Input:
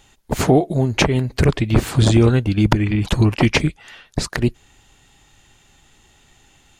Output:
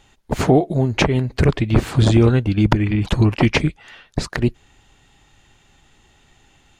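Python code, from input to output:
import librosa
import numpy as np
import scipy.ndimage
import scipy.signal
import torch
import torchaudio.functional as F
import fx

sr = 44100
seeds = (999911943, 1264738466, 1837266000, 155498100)

y = fx.high_shelf(x, sr, hz=6300.0, db=-9.5)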